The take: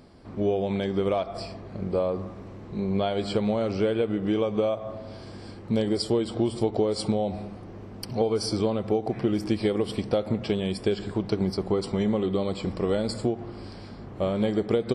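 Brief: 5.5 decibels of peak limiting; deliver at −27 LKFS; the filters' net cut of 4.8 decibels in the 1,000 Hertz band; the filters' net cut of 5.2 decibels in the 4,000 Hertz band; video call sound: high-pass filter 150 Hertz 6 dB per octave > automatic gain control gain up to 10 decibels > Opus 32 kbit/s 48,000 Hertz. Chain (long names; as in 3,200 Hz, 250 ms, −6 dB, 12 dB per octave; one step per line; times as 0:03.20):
parametric band 1,000 Hz −7 dB
parametric band 4,000 Hz −6.5 dB
brickwall limiter −18 dBFS
high-pass filter 150 Hz 6 dB per octave
automatic gain control gain up to 10 dB
level +3 dB
Opus 32 kbit/s 48,000 Hz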